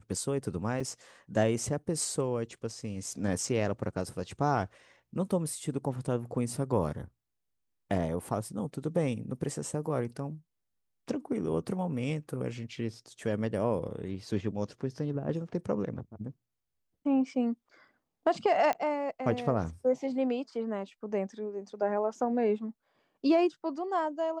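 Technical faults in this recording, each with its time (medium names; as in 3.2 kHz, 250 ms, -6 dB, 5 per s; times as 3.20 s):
0.80 s: dropout 4.5 ms
18.73 s: pop -19 dBFS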